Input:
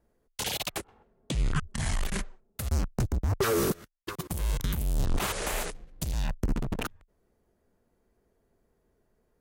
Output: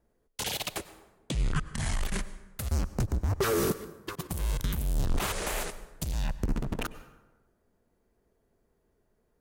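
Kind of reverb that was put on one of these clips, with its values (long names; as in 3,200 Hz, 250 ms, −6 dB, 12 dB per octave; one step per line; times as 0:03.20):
dense smooth reverb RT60 1.1 s, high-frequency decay 0.6×, pre-delay 85 ms, DRR 14.5 dB
level −1 dB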